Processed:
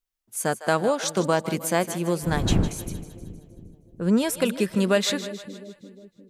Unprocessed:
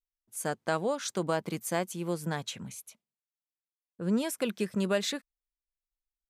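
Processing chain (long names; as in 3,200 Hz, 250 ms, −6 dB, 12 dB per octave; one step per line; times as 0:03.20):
0:02.22–0:02.67: wind on the microphone 190 Hz −40 dBFS
echo with a time of its own for lows and highs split 500 Hz, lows 355 ms, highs 156 ms, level −13 dB
level +7.5 dB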